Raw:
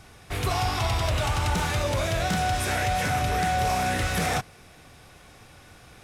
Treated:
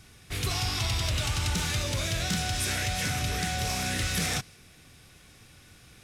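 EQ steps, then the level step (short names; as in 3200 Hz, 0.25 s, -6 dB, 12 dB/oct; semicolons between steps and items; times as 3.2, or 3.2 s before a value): dynamic EQ 5200 Hz, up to +4 dB, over -45 dBFS, Q 0.74; low shelf 100 Hz -4.5 dB; bell 770 Hz -11.5 dB 2 oct; 0.0 dB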